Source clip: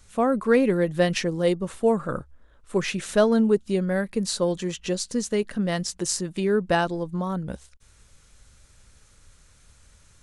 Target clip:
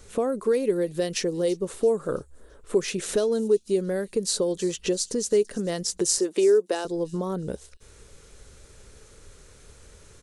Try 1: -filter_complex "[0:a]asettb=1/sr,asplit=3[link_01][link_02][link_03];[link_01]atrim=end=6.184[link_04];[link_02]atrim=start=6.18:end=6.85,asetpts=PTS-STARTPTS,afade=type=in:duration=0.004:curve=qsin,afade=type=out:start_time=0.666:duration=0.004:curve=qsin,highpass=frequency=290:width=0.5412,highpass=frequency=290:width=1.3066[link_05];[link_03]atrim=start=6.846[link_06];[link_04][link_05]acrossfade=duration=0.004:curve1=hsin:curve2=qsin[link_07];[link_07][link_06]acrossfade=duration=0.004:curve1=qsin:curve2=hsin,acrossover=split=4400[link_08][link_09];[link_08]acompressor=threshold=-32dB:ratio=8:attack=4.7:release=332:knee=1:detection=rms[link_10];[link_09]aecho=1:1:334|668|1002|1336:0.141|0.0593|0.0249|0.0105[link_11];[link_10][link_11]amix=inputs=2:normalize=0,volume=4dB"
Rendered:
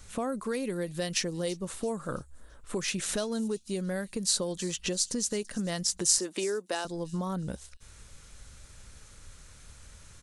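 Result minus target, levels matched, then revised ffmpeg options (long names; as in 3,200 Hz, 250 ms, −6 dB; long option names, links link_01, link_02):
500 Hz band −5.5 dB
-filter_complex "[0:a]asettb=1/sr,asplit=3[link_01][link_02][link_03];[link_01]atrim=end=6.184[link_04];[link_02]atrim=start=6.18:end=6.85,asetpts=PTS-STARTPTS,afade=type=in:duration=0.004:curve=qsin,afade=type=out:start_time=0.666:duration=0.004:curve=qsin,highpass=frequency=290:width=0.5412,highpass=frequency=290:width=1.3066[link_05];[link_03]atrim=start=6.846[link_06];[link_04][link_05]acrossfade=duration=0.004:curve1=hsin:curve2=qsin[link_07];[link_07][link_06]acrossfade=duration=0.004:curve1=qsin:curve2=hsin,acrossover=split=4400[link_08][link_09];[link_08]acompressor=threshold=-32dB:ratio=8:attack=4.7:release=332:knee=1:detection=rms,equalizer=frequency=420:width=1.8:gain=14[link_10];[link_09]aecho=1:1:334|668|1002|1336:0.141|0.0593|0.0249|0.0105[link_11];[link_10][link_11]amix=inputs=2:normalize=0,volume=4dB"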